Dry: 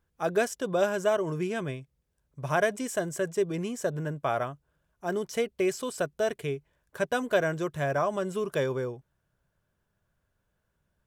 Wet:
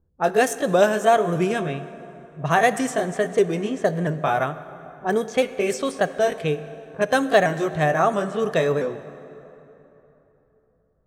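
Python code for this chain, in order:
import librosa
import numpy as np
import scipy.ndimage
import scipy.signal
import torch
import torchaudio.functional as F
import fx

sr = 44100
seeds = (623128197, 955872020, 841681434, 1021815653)

y = fx.pitch_ramps(x, sr, semitones=2.0, every_ms=678)
y = fx.env_lowpass(y, sr, base_hz=470.0, full_db=-27.5)
y = fx.rev_plate(y, sr, seeds[0], rt60_s=3.4, hf_ratio=0.6, predelay_ms=0, drr_db=12.5)
y = F.gain(torch.from_numpy(y), 9.0).numpy()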